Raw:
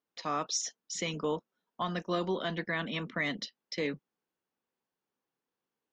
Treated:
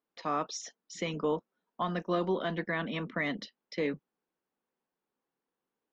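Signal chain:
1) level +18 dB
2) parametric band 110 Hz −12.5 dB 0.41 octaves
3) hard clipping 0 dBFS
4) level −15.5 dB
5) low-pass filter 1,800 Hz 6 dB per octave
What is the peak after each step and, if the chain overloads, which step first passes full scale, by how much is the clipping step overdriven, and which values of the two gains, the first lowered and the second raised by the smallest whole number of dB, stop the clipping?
−2.0, −2.0, −2.0, −17.5, −19.0 dBFS
no step passes full scale

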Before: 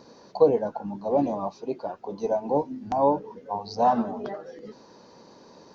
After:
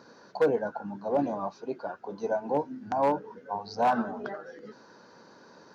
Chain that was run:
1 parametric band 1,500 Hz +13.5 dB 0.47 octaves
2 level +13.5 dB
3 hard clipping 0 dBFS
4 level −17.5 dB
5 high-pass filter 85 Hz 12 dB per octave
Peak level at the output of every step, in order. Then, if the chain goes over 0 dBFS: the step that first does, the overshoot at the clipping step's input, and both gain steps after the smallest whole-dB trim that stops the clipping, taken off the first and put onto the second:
−6.5, +7.0, 0.0, −17.5, −15.0 dBFS
step 2, 7.0 dB
step 2 +6.5 dB, step 4 −10.5 dB

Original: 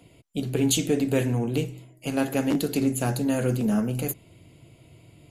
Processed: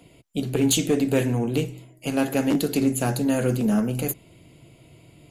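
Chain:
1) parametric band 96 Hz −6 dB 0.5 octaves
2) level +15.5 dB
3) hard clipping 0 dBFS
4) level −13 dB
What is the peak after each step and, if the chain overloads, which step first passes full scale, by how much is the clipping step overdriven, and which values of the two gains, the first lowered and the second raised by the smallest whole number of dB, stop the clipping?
−10.5, +5.0, 0.0, −13.0 dBFS
step 2, 5.0 dB
step 2 +10.5 dB, step 4 −8 dB

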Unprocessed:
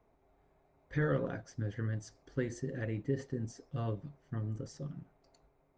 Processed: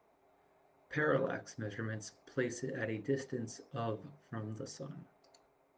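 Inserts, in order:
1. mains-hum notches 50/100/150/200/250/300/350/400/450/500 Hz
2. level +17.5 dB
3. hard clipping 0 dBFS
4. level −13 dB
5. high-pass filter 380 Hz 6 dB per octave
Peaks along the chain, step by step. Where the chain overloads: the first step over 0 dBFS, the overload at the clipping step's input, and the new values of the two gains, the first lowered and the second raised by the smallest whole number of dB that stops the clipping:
−20.0, −2.5, −2.5, −15.5, −18.0 dBFS
no step passes full scale

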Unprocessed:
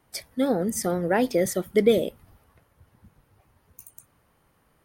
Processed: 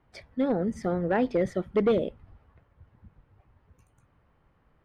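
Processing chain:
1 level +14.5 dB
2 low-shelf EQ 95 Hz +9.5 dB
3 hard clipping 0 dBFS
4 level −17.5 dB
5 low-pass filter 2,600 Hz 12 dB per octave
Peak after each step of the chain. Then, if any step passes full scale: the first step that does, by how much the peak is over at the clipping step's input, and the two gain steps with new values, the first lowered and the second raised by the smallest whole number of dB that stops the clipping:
+6.5, +7.5, 0.0, −17.5, −17.0 dBFS
step 1, 7.5 dB
step 1 +6.5 dB, step 4 −9.5 dB

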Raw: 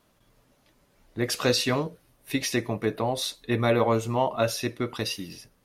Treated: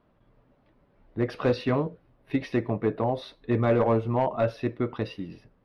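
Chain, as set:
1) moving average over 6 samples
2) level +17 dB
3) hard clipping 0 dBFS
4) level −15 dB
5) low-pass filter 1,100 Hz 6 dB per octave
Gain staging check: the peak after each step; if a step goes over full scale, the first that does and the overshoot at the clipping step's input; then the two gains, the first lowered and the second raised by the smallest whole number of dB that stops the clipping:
−9.5, +7.5, 0.0, −15.0, −15.0 dBFS
step 2, 7.5 dB
step 2 +9 dB, step 4 −7 dB

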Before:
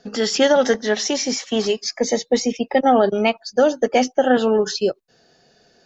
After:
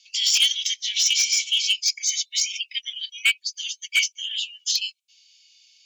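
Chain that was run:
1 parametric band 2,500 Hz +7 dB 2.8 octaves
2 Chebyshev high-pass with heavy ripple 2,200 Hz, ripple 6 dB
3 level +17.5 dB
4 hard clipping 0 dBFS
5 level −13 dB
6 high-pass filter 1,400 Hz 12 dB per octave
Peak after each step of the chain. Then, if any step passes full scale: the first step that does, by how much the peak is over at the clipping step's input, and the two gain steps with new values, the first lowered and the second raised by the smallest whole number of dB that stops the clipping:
−1.5, −8.5, +9.0, 0.0, −13.0, −8.5 dBFS
step 3, 9.0 dB
step 3 +8.5 dB, step 5 −4 dB

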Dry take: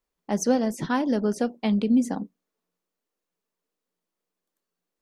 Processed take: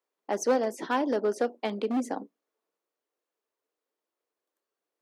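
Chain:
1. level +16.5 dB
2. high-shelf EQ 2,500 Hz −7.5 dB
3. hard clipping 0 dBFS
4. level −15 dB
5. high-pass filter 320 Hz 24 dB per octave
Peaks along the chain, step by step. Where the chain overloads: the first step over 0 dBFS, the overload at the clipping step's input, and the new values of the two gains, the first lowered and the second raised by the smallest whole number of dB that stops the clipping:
+6.5, +6.0, 0.0, −15.0, −14.0 dBFS
step 1, 6.0 dB
step 1 +10.5 dB, step 4 −9 dB

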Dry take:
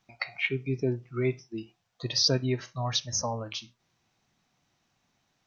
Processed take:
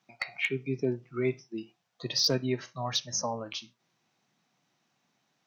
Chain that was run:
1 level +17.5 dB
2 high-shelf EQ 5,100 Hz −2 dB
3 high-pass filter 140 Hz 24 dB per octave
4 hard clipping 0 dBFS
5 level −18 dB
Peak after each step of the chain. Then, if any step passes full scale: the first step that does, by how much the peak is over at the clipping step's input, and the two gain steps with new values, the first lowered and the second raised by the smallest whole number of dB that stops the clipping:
+6.0, +5.0, +5.0, 0.0, −18.0 dBFS
step 1, 5.0 dB
step 1 +12.5 dB, step 5 −13 dB

